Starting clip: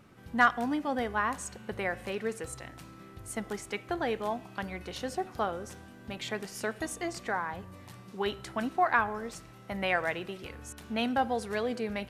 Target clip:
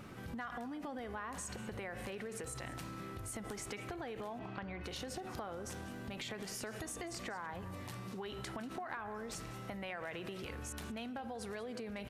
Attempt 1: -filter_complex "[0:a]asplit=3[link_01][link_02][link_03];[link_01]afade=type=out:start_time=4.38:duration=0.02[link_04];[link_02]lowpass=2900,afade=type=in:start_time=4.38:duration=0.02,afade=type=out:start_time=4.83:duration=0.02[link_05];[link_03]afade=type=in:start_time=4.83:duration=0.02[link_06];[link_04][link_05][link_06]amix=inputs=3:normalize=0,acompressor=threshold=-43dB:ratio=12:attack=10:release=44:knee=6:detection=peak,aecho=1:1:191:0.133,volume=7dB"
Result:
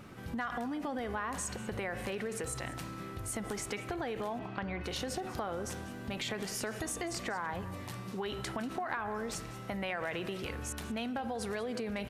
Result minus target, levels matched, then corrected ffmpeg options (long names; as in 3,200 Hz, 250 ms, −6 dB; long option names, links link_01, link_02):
downward compressor: peak gain reduction −7 dB
-filter_complex "[0:a]asplit=3[link_01][link_02][link_03];[link_01]afade=type=out:start_time=4.38:duration=0.02[link_04];[link_02]lowpass=2900,afade=type=in:start_time=4.38:duration=0.02,afade=type=out:start_time=4.83:duration=0.02[link_05];[link_03]afade=type=in:start_time=4.83:duration=0.02[link_06];[link_04][link_05][link_06]amix=inputs=3:normalize=0,acompressor=threshold=-50.5dB:ratio=12:attack=10:release=44:knee=6:detection=peak,aecho=1:1:191:0.133,volume=7dB"